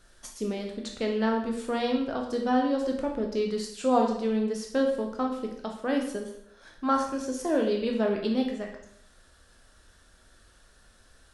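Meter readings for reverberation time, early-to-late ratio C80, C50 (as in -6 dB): 0.70 s, 9.0 dB, 6.0 dB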